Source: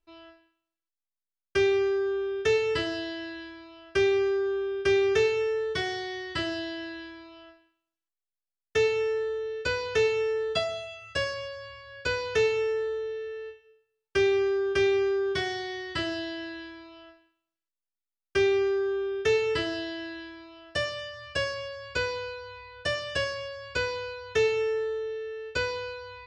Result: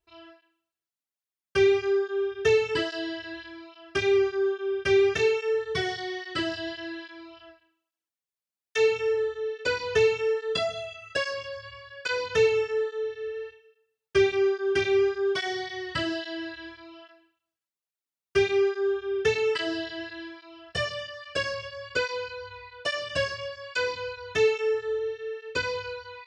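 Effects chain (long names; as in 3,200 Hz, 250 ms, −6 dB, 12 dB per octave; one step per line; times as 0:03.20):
through-zero flanger with one copy inverted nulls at 1.2 Hz, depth 4 ms
level +4 dB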